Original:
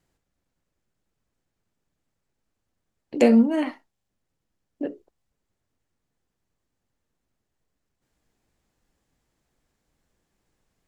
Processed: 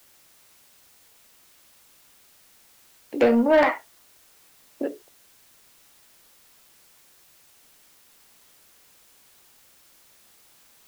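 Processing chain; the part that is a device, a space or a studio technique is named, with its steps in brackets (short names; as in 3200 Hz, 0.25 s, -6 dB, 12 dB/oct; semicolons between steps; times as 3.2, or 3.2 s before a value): 3.46–4.82 band shelf 1000 Hz +12.5 dB 2.9 oct; tape answering machine (BPF 340–3100 Hz; soft clip -15 dBFS, distortion -13 dB; wow and flutter; white noise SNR 26 dB); gain +4 dB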